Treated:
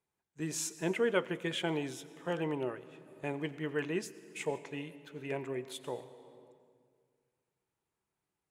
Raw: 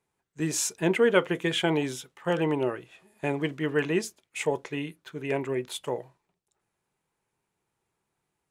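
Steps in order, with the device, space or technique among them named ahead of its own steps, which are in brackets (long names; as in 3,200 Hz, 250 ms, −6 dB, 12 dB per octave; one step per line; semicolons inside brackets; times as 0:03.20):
compressed reverb return (on a send at −7.5 dB: convolution reverb RT60 1.8 s, pre-delay 82 ms + downward compressor 4 to 1, threshold −34 dBFS, peak gain reduction 13 dB)
on the sum: level −8.5 dB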